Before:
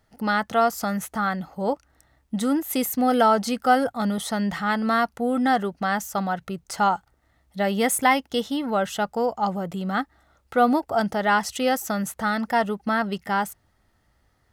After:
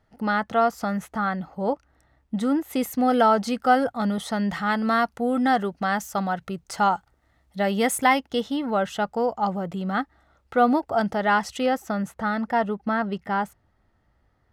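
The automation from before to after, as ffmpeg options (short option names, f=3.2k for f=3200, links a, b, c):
-af "asetnsamples=n=441:p=0,asendcmd='2.82 lowpass f 4300;4.49 lowpass f 7700;8.19 lowpass f 3700;11.66 lowpass f 1700',lowpass=f=2.5k:p=1"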